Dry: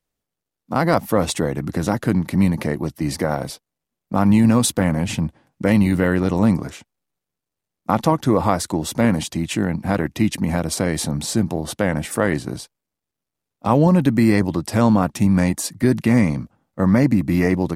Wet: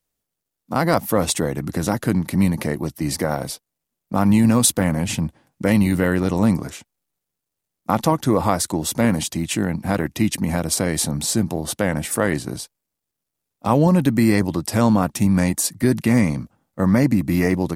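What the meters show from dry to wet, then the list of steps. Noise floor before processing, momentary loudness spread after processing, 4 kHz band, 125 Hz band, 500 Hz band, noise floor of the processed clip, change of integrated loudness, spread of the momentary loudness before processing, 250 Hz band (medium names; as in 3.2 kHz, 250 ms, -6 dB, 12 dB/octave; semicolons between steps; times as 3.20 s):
-84 dBFS, 10 LU, +1.5 dB, -1.0 dB, -1.0 dB, -82 dBFS, -0.5 dB, 9 LU, -1.0 dB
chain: treble shelf 6 kHz +8.5 dB; trim -1 dB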